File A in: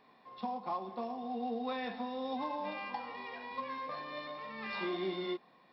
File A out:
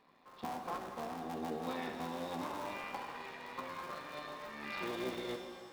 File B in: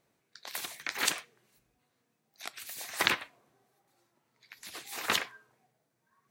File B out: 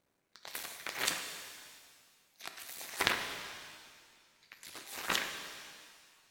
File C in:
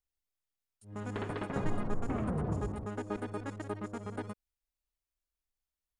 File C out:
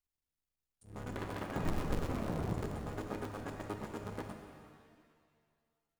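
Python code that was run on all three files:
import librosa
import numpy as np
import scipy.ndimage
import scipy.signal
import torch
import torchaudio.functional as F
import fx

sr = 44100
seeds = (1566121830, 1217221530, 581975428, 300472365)

y = fx.cycle_switch(x, sr, every=3, mode='muted')
y = fx.rev_shimmer(y, sr, seeds[0], rt60_s=1.9, semitones=7, shimmer_db=-8, drr_db=5.0)
y = F.gain(torch.from_numpy(y), -2.5).numpy()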